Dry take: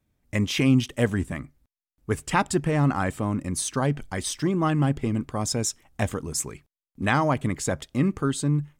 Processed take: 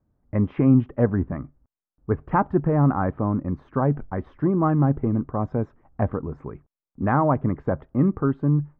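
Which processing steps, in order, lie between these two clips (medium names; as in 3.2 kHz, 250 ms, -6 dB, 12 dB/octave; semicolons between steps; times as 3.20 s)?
low-pass 1.3 kHz 24 dB/octave; trim +3 dB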